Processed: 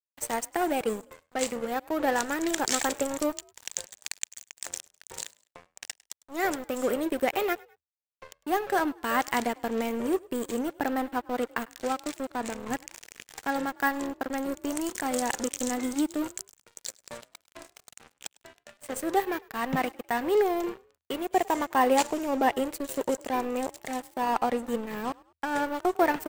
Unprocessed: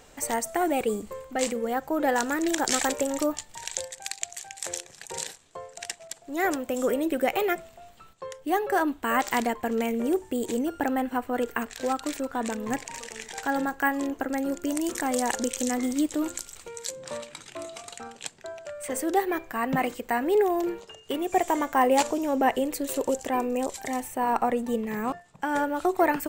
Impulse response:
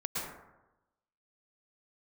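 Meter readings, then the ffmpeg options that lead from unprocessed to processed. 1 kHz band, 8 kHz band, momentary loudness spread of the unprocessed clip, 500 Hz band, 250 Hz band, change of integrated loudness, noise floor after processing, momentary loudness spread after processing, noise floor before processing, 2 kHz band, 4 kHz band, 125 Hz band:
-1.5 dB, -2.5 dB, 13 LU, -2.0 dB, -3.0 dB, -2.0 dB, -83 dBFS, 14 LU, -53 dBFS, -1.5 dB, -1.5 dB, -2.0 dB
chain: -filter_complex "[0:a]aeval=exprs='sgn(val(0))*max(abs(val(0))-0.0168,0)':c=same,asplit=3[s0][s1][s2];[s1]adelay=102,afreqshift=40,volume=0.0631[s3];[s2]adelay=204,afreqshift=80,volume=0.0245[s4];[s0][s3][s4]amix=inputs=3:normalize=0"

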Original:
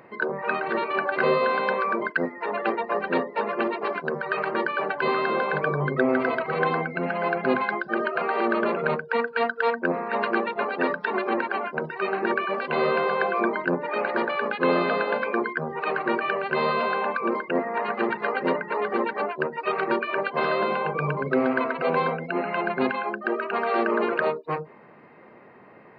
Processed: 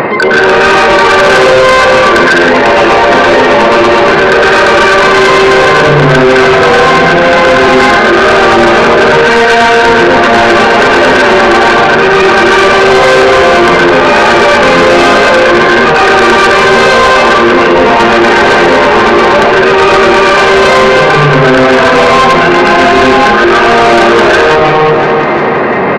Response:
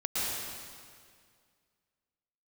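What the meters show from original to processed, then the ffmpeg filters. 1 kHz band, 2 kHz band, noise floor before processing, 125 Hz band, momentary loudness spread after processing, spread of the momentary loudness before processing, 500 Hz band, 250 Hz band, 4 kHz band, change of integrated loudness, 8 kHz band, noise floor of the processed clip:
+21.0 dB, +22.5 dB, -49 dBFS, +21.0 dB, 1 LU, 5 LU, +21.0 dB, +20.0 dB, +29.0 dB, +21.5 dB, no reading, -6 dBFS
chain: -filter_complex "[1:a]atrim=start_sample=2205,afade=t=out:st=0.41:d=0.01,atrim=end_sample=18522[s0];[0:a][s0]afir=irnorm=-1:irlink=0,aresample=11025,aresample=44100,aresample=16000,asoftclip=type=tanh:threshold=0.141,aresample=44100,bass=f=250:g=-3,treble=f=4000:g=0,aecho=1:1:348|696|1044|1392|1740:0.178|0.0889|0.0445|0.0222|0.0111,areverse,acompressor=threshold=0.02:ratio=4,areverse,aeval=exprs='0.0596*sin(PI/2*2*val(0)/0.0596)':c=same,alimiter=level_in=53.1:limit=0.891:release=50:level=0:latency=1,volume=0.891"

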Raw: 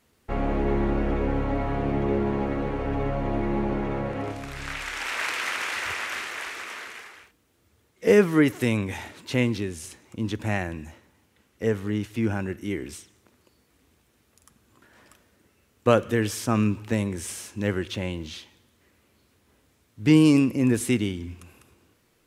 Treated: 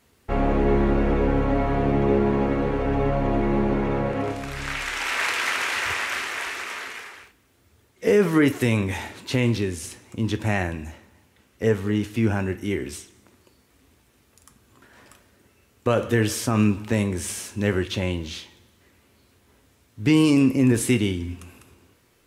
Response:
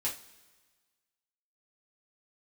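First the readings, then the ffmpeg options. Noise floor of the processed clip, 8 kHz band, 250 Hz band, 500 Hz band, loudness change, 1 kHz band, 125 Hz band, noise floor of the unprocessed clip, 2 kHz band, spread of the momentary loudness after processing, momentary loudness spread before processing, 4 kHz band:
-61 dBFS, +4.0 dB, +2.0 dB, +2.5 dB, +2.5 dB, +3.0 dB, +3.5 dB, -66 dBFS, +3.5 dB, 12 LU, 15 LU, +3.5 dB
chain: -filter_complex "[0:a]asplit=2[s0][s1];[1:a]atrim=start_sample=2205[s2];[s1][s2]afir=irnorm=-1:irlink=0,volume=0.335[s3];[s0][s3]amix=inputs=2:normalize=0,alimiter=level_in=3.16:limit=0.891:release=50:level=0:latency=1,volume=0.398"

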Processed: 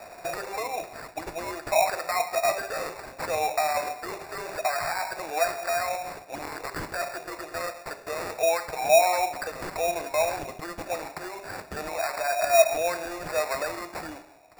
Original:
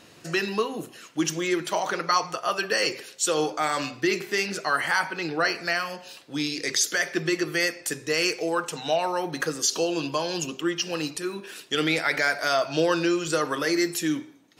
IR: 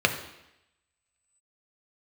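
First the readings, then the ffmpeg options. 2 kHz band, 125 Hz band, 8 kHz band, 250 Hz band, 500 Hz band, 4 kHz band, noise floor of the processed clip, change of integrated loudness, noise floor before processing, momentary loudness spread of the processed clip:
-5.5 dB, -9.0 dB, -5.5 dB, -14.5 dB, +1.0 dB, -8.0 dB, -47 dBFS, -2.0 dB, -51 dBFS, 15 LU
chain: -filter_complex "[0:a]acompressor=threshold=0.02:ratio=2.5,alimiter=level_in=1.33:limit=0.0631:level=0:latency=1:release=24,volume=0.75,acrusher=bits=4:mode=log:mix=0:aa=0.000001,highpass=f=670:t=q:w=7.6,acrusher=samples=14:mix=1:aa=0.000001,asplit=2[s0][s1];[1:a]atrim=start_sample=2205,asetrate=66150,aresample=44100[s2];[s1][s2]afir=irnorm=-1:irlink=0,volume=0.0841[s3];[s0][s3]amix=inputs=2:normalize=0,volume=1.26"

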